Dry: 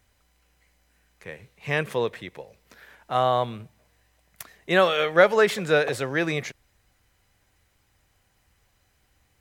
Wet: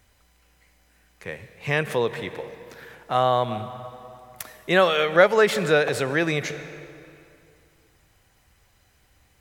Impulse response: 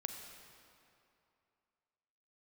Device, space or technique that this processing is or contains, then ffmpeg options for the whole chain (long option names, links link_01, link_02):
ducked reverb: -filter_complex "[0:a]asplit=3[link_01][link_02][link_03];[1:a]atrim=start_sample=2205[link_04];[link_02][link_04]afir=irnorm=-1:irlink=0[link_05];[link_03]apad=whole_len=414619[link_06];[link_05][link_06]sidechaincompress=threshold=-29dB:ratio=8:attack=8:release=129,volume=-0.5dB[link_07];[link_01][link_07]amix=inputs=2:normalize=0"